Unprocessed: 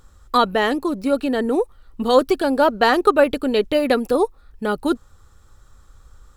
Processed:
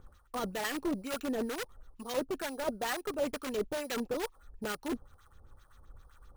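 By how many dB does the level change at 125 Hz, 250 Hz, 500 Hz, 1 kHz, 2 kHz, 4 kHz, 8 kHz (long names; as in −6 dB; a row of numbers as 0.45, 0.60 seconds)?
can't be measured, −16.0 dB, −17.5 dB, −19.5 dB, −15.0 dB, −14.0 dB, −2.0 dB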